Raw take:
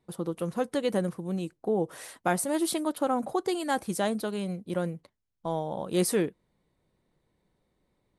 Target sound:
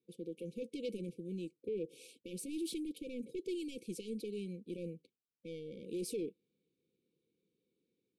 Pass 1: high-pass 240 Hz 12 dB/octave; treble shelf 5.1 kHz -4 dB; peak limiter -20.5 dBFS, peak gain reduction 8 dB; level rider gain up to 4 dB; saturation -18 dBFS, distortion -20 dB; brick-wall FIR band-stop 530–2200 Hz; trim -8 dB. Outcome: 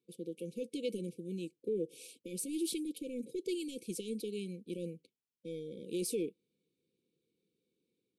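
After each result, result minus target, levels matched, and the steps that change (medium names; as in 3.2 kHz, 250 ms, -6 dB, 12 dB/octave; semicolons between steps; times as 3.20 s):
saturation: distortion -9 dB; 8 kHz band +4.0 dB
change: saturation -25.5 dBFS, distortion -10 dB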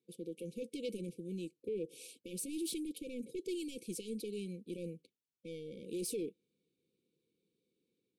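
8 kHz band +5.0 dB
change: treble shelf 5.1 kHz -13 dB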